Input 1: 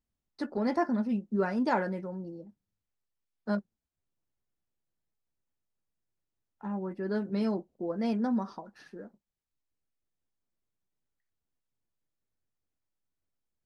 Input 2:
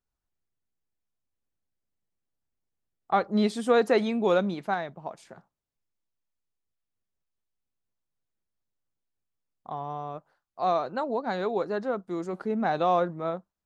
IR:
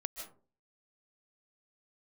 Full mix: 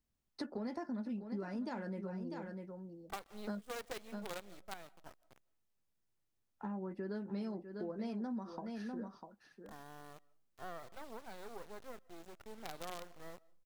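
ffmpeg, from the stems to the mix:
-filter_complex "[0:a]acrossover=split=270|3000[link_01][link_02][link_03];[link_02]acompressor=threshold=-32dB:ratio=6[link_04];[link_01][link_04][link_03]amix=inputs=3:normalize=0,volume=1dB,asplit=2[link_05][link_06];[link_06]volume=-11.5dB[link_07];[1:a]highpass=340,aeval=exprs='val(0)+0.00178*(sin(2*PI*50*n/s)+sin(2*PI*2*50*n/s)/2+sin(2*PI*3*50*n/s)/3+sin(2*PI*4*50*n/s)/4+sin(2*PI*5*50*n/s)/5)':channel_layout=same,acrusher=bits=4:dc=4:mix=0:aa=0.000001,volume=-16dB,asplit=2[link_08][link_09];[link_09]volume=-18.5dB[link_10];[2:a]atrim=start_sample=2205[link_11];[link_10][link_11]afir=irnorm=-1:irlink=0[link_12];[link_07]aecho=0:1:648:1[link_13];[link_05][link_08][link_12][link_13]amix=inputs=4:normalize=0,acompressor=threshold=-40dB:ratio=4"

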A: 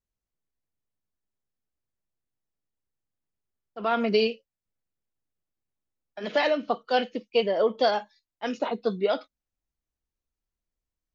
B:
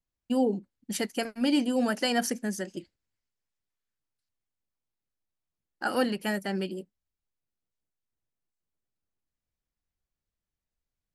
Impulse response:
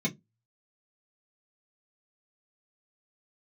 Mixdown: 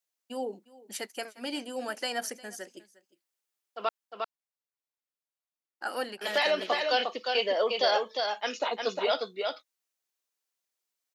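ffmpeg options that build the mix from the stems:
-filter_complex "[0:a]highshelf=frequency=2200:gain=9.5,alimiter=limit=-14.5dB:level=0:latency=1:release=25,volume=-1dB,asplit=3[link_01][link_02][link_03];[link_01]atrim=end=3.89,asetpts=PTS-STARTPTS,afade=type=out:start_time=3.886:duration=0.004:curve=hsin[link_04];[link_02]atrim=start=3.89:end=6.21,asetpts=PTS-STARTPTS,volume=0[link_05];[link_03]atrim=start=6.21,asetpts=PTS-STARTPTS,afade=type=in:duration=0.004:curve=hsin[link_06];[link_04][link_05][link_06]concat=n=3:v=0:a=1,asplit=2[link_07][link_08];[link_08]volume=-4.5dB[link_09];[1:a]volume=-4dB,asplit=2[link_10][link_11];[link_11]volume=-20.5dB[link_12];[link_09][link_12]amix=inputs=2:normalize=0,aecho=0:1:355:1[link_13];[link_07][link_10][link_13]amix=inputs=3:normalize=0,highpass=470"

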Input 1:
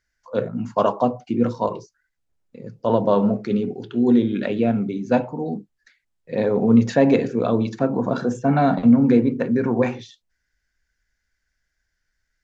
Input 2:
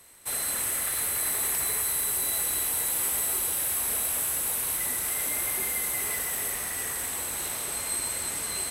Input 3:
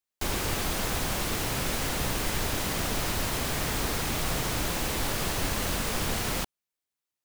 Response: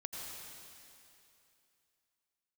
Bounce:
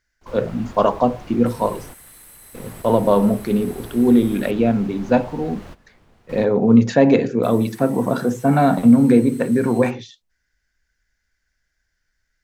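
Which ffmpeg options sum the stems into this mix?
-filter_complex "[0:a]volume=2.5dB,asplit=2[link_01][link_02];[1:a]highpass=600,alimiter=limit=-23dB:level=0:latency=1:release=13,acrusher=bits=6:mix=0:aa=0.000001,adelay=1200,volume=-13.5dB,asplit=3[link_03][link_04][link_05];[link_03]atrim=end=4.51,asetpts=PTS-STARTPTS,afade=type=out:start_time=4.506:duration=0.004:curve=hsin[link_06];[link_04]atrim=start=4.51:end=7.43,asetpts=PTS-STARTPTS,volume=0[link_07];[link_05]atrim=start=7.43,asetpts=PTS-STARTPTS,afade=type=in:duration=0.004:curve=hsin[link_08];[link_06][link_07][link_08]concat=n=3:v=0:a=1[link_09];[2:a]lowpass=frequency=1200:poles=1,volume=-7dB[link_10];[link_02]apad=whole_len=319514[link_11];[link_10][link_11]sidechaingate=range=-17dB:threshold=-44dB:ratio=16:detection=peak[link_12];[link_01][link_09][link_12]amix=inputs=3:normalize=0"

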